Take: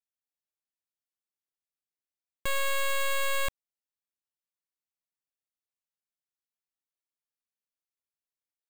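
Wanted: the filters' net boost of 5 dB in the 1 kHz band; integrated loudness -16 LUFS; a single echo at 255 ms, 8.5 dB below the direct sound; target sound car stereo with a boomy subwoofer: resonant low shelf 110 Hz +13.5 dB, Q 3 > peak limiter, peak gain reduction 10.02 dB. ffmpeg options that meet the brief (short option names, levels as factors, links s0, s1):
-af "lowshelf=f=110:t=q:w=3:g=13.5,equalizer=f=1000:t=o:g=5.5,aecho=1:1:255:0.376,volume=9.44,alimiter=limit=0.944:level=0:latency=1"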